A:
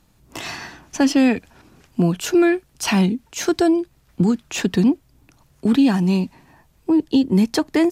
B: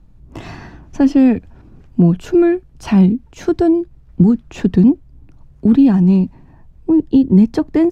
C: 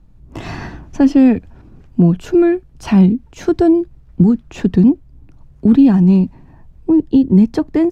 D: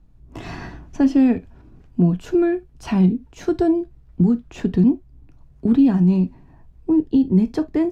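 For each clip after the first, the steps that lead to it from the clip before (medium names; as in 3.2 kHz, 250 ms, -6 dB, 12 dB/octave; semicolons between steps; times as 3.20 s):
tilt EQ -4 dB/octave; trim -2.5 dB
level rider gain up to 9.5 dB; trim -1 dB
gated-style reverb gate 90 ms falling, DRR 10 dB; trim -6 dB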